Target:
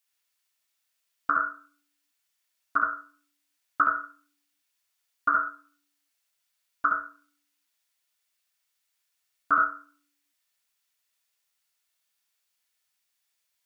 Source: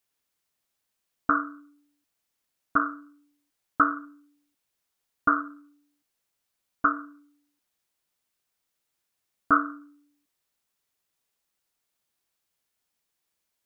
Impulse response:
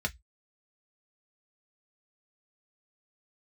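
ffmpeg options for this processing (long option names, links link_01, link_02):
-filter_complex "[0:a]tiltshelf=frequency=640:gain=-9.5,asplit=2[link_01][link_02];[1:a]atrim=start_sample=2205,adelay=68[link_03];[link_02][link_03]afir=irnorm=-1:irlink=0,volume=-6dB[link_04];[link_01][link_04]amix=inputs=2:normalize=0,volume=-7.5dB"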